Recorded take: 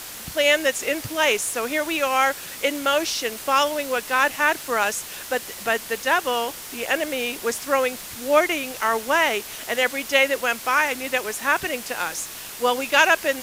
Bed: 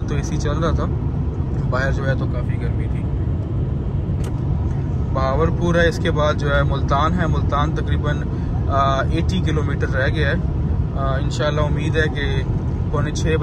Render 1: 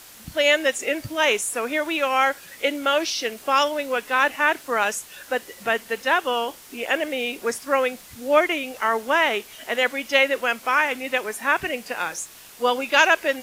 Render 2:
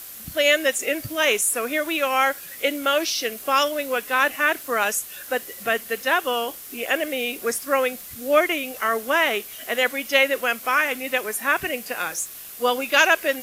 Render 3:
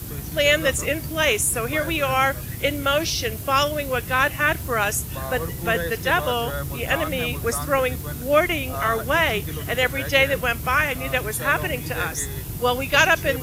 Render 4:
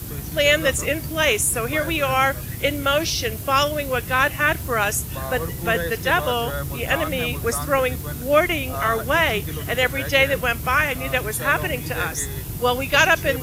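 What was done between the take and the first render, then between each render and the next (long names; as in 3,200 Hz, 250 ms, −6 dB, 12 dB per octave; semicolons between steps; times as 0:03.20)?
noise reduction from a noise print 9 dB
parametric band 13,000 Hz +11.5 dB 0.8 octaves; notch filter 900 Hz, Q 7.6
mix in bed −12 dB
level +1 dB; brickwall limiter −3 dBFS, peak gain reduction 1.5 dB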